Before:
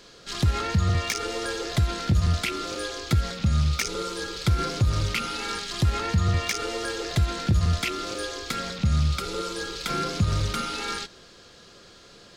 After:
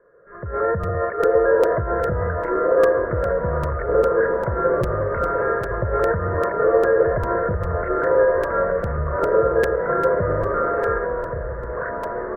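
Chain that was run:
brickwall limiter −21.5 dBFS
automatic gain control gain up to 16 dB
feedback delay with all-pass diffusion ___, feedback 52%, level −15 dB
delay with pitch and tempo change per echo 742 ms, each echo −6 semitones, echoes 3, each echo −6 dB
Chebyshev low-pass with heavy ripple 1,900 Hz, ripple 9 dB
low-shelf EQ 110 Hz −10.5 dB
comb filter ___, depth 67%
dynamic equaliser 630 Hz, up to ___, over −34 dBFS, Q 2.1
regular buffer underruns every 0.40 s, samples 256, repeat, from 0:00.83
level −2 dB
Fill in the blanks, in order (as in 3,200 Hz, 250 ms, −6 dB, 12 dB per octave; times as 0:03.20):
1,349 ms, 1.9 ms, +6 dB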